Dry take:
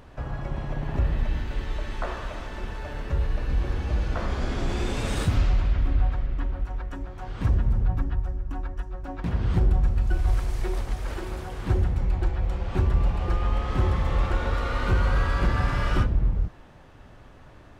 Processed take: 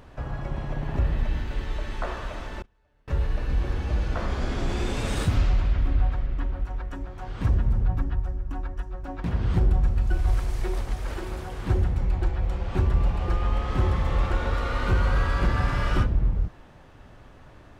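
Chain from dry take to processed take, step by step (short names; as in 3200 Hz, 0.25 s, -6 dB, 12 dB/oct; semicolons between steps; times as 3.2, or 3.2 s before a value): 2.62–3.08 gate -25 dBFS, range -33 dB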